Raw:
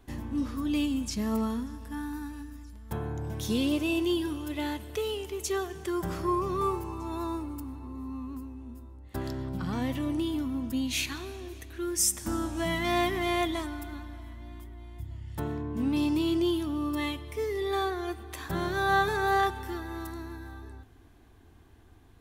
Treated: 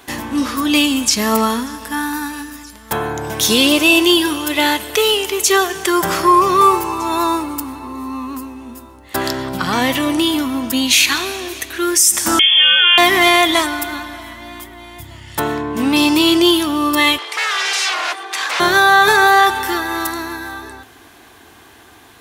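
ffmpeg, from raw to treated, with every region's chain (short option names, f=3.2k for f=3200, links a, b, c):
-filter_complex "[0:a]asettb=1/sr,asplit=3[a][b][c];[a]atrim=end=12.394[d];[b]atrim=start=12.39:end=12.98,asetpts=PTS-STARTPTS,afade=t=in:d=0.004:c=qsin,afade=t=out:st=0.586:d=0.004:c=qsin,acompressor=threshold=-30dB:ratio=4:attack=3.2:release=140:knee=1:detection=peak,lowpass=f=3k:t=q:w=0.5098,lowpass=f=3k:t=q:w=0.6013,lowpass=f=3k:t=q:w=0.9,lowpass=f=3k:t=q:w=2.563,afreqshift=-3500[e];[c]atrim=start=12.976[f];[d][e]acrossfade=d=0.004:c1=hsin:c2=qsin[g];[g][f]acrossfade=d=0.004:c1=qsin:c2=hsin,asettb=1/sr,asplit=3[h][i][j];[h]atrim=end=17.184[k];[i]atrim=start=17.18:end=18.6,asetpts=PTS-STARTPTS,afade=t=in:d=0.004:c=qsin,afade=t=out:st=1.416:d=0.004:c=qsin,aecho=1:1:2.5:0.45,atrim=end_sample=62622,aeval=exprs='0.0178*(abs(mod(val(0)/0.0178+3,4)-2)-1)':c=same,highpass=580,lowpass=7.4k[l];[j]atrim=start=18.596[m];[k][l]acrossfade=d=0.004:c1=hsin:c2=qsin[n];[n][m]acrossfade=d=0.004:c1=qsin:c2=hsin,highpass=f=1.1k:p=1,alimiter=level_in=25dB:limit=-1dB:release=50:level=0:latency=1,volume=-1dB"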